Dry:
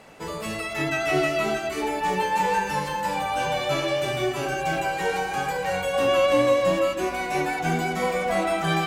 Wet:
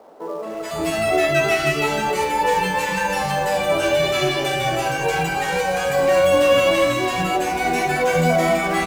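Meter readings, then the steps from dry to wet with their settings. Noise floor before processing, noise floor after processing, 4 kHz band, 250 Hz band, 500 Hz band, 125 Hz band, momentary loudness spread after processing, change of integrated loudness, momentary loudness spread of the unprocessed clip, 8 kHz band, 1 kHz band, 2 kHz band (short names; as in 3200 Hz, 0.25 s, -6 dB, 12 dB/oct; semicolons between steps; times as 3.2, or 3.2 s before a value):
-32 dBFS, -29 dBFS, +6.0 dB, +4.0 dB, +5.5 dB, +5.0 dB, 6 LU, +5.0 dB, 6 LU, +7.0 dB, +4.0 dB, +5.5 dB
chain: doubler 12 ms -13.5 dB; three bands offset in time mids, highs, lows 0.43/0.52 s, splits 270/1100 Hz; in parallel at -12 dB: companded quantiser 4-bit; on the sum: gain +4.5 dB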